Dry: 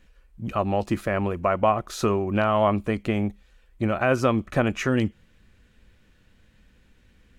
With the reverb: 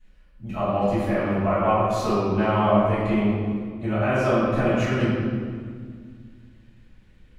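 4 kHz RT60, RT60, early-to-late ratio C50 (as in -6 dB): 1.4 s, 1.9 s, -3.5 dB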